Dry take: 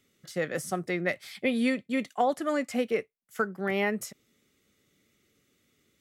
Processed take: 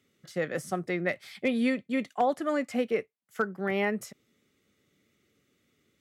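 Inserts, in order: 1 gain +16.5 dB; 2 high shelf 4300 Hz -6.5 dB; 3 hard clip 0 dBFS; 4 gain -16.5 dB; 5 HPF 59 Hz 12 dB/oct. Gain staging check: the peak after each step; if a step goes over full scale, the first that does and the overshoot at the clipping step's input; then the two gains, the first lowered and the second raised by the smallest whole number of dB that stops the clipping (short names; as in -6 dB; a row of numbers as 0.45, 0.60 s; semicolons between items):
+4.5, +4.0, 0.0, -16.5, -15.5 dBFS; step 1, 4.0 dB; step 1 +12.5 dB, step 4 -12.5 dB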